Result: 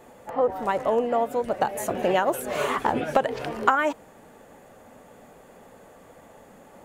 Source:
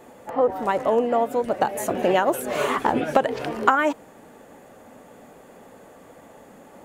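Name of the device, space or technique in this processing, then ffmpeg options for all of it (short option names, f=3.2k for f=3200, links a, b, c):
low shelf boost with a cut just above: -af "lowshelf=f=62:g=7,equalizer=f=290:t=o:w=0.75:g=-3.5,volume=-2dB"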